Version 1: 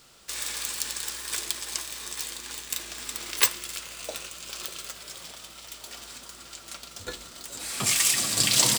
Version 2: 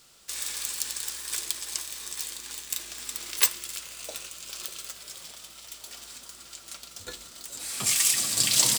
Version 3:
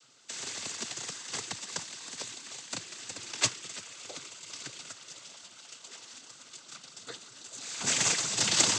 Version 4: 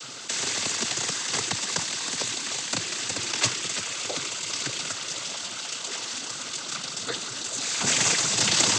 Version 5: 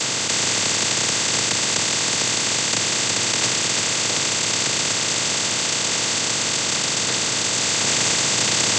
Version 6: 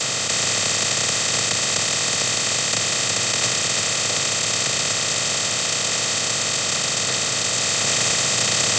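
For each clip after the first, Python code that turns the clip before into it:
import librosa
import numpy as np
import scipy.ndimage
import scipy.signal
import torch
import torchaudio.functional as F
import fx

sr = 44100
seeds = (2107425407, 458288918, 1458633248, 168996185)

y1 = fx.peak_eq(x, sr, hz=14000.0, db=6.5, octaves=2.4)
y1 = F.gain(torch.from_numpy(y1), -5.5).numpy()
y2 = fx.cheby_harmonics(y1, sr, harmonics=(8,), levels_db=(-14,), full_scale_db=-1.0)
y2 = fx.noise_vocoder(y2, sr, seeds[0], bands=16)
y2 = F.gain(torch.from_numpy(y2), -2.5).numpy()
y3 = fx.high_shelf(y2, sr, hz=12000.0, db=-7.0)
y3 = fx.env_flatten(y3, sr, amount_pct=50)
y3 = F.gain(torch.from_numpy(y3), 2.5).numpy()
y4 = fx.bin_compress(y3, sr, power=0.2)
y4 = F.gain(torch.from_numpy(y4), -3.0).numpy()
y5 = y4 + 0.43 * np.pad(y4, (int(1.6 * sr / 1000.0), 0))[:len(y4)]
y5 = F.gain(torch.from_numpy(y5), -1.0).numpy()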